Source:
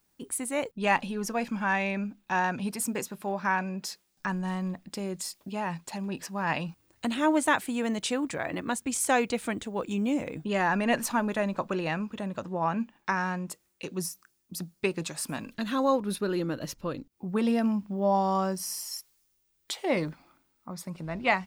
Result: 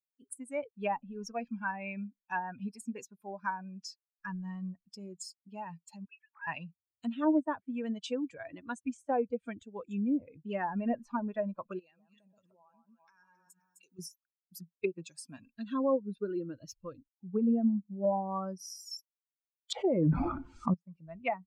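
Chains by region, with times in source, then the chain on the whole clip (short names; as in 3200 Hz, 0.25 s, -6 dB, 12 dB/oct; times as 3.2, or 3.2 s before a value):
6.05–6.47 sine-wave speech + HPF 1400 Hz
11.79–13.99 tone controls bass -5 dB, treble +10 dB + echo with dull and thin repeats by turns 0.129 s, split 1400 Hz, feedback 51%, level -4.5 dB + compressor 12:1, threshold -39 dBFS
19.72–20.74 Chebyshev low-pass 8700 Hz, order 3 + fast leveller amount 100%
whole clip: per-bin expansion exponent 2; treble ducked by the level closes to 670 Hz, closed at -27.5 dBFS; gain +1 dB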